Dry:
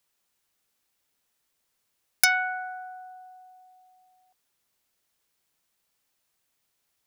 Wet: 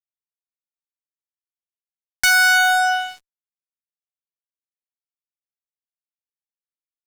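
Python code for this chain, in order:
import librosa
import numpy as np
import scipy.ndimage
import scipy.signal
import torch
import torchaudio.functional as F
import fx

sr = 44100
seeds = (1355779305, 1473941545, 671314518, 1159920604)

y = fx.filter_sweep_bandpass(x, sr, from_hz=1400.0, to_hz=3700.0, start_s=2.13, end_s=3.45, q=0.82)
y = fx.fuzz(y, sr, gain_db=49.0, gate_db=-53.0)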